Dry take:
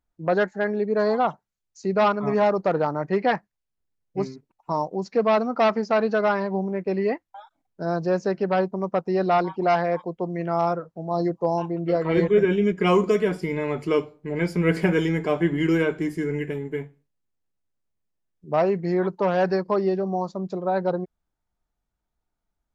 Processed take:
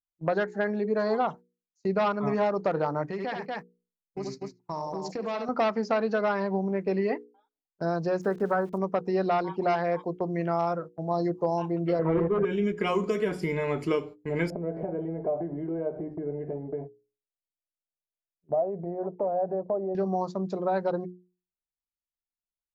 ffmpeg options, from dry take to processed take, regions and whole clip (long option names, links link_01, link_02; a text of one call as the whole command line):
ffmpeg -i in.wav -filter_complex "[0:a]asettb=1/sr,asplit=3[link_01][link_02][link_03];[link_01]atrim=end=3.104[link_04];[link_02]atrim=start=3.1:end=5.49,asetpts=PTS-STARTPTS,afade=type=in:duration=0.004:curve=qsin,afade=type=out:start_time=2.386:duration=0.004:curve=qsin,aecho=1:1:71|236:0.422|0.335,atrim=end_sample=105399,acompressor=threshold=-29dB:ratio=8:attack=3.2:release=140:knee=1:detection=peak,highshelf=frequency=4100:gain=10[link_05];[link_03]atrim=start=5.486[link_06];[link_04][link_05]acrossfade=duration=0.004:curve1=hsin:curve2=qsin[link_07];[link_07][link_06]acrossfade=duration=0.004:curve1=qsin:curve2=hsin,asettb=1/sr,asplit=3[link_08][link_09][link_10];[link_08]atrim=end=8.214[link_11];[link_09]atrim=start=8.21:end=8.78,asetpts=PTS-STARTPTS,afade=type=in:duration=0.004:curve=qsin,afade=type=out:start_time=0.566:duration=0.004:curve=qsin,highshelf=frequency=2000:width_type=q:width=3:gain=-11,aeval=exprs='val(0)*gte(abs(val(0)),0.00501)':channel_layout=same[link_12];[link_10]atrim=start=8.776[link_13];[link_11][link_12]acrossfade=duration=0.004:curve1=hsin:curve2=qsin[link_14];[link_14][link_13]acrossfade=duration=0.004:curve1=qsin:curve2=hsin,asettb=1/sr,asplit=3[link_15][link_16][link_17];[link_15]atrim=end=11.994[link_18];[link_16]atrim=start=11.99:end=12.45,asetpts=PTS-STARTPTS,afade=type=in:duration=0.004:curve=qsin,afade=type=out:start_time=0.456:duration=0.004:curve=qsin,lowpass=1100,aeval=exprs='0.355*sin(PI/2*1.58*val(0)/0.355)':channel_layout=same[link_19];[link_17]atrim=start=12.446[link_20];[link_18][link_19]acrossfade=duration=0.004:curve1=hsin:curve2=qsin[link_21];[link_21][link_20]acrossfade=duration=0.004:curve1=qsin:curve2=hsin,asettb=1/sr,asplit=3[link_22][link_23][link_24];[link_22]atrim=end=14.504[link_25];[link_23]atrim=start=14.5:end=19.95,asetpts=PTS-STARTPTS,afade=type=in:duration=0.004:curve=qsin,afade=type=out:start_time=5.446:duration=0.004:curve=qsin,acompressor=threshold=-32dB:ratio=6:attack=3.2:release=140:knee=1:detection=peak,lowpass=frequency=660:width_type=q:width=5.8[link_26];[link_24]atrim=start=19.946[link_27];[link_25][link_26]acrossfade=duration=0.004:curve1=hsin:curve2=qsin[link_28];[link_28][link_27]acrossfade=duration=0.004:curve1=qsin:curve2=hsin,agate=range=-25dB:threshold=-36dB:ratio=16:detection=peak,acompressor=threshold=-22dB:ratio=6,bandreject=frequency=60:width_type=h:width=6,bandreject=frequency=120:width_type=h:width=6,bandreject=frequency=180:width_type=h:width=6,bandreject=frequency=240:width_type=h:width=6,bandreject=frequency=300:width_type=h:width=6,bandreject=frequency=360:width_type=h:width=6,bandreject=frequency=420:width_type=h:width=6,bandreject=frequency=480:width_type=h:width=6" out.wav